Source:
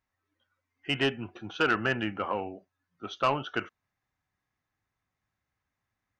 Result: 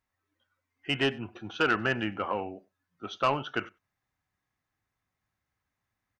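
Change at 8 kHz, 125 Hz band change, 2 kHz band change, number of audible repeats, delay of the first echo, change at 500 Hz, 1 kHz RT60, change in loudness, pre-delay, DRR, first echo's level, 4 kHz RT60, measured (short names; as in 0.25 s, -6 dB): 0.0 dB, 0.0 dB, 0.0 dB, 1, 96 ms, 0.0 dB, none, 0.0 dB, none, none, -24.0 dB, none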